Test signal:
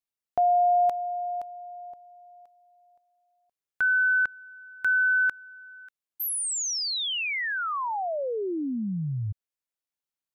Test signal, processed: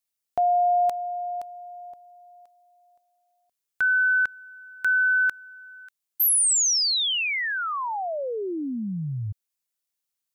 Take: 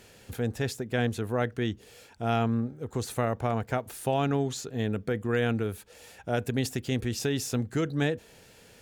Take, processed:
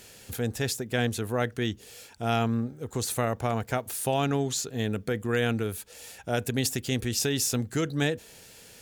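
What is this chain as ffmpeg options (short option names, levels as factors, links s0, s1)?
-af "highshelf=f=3500:g=10"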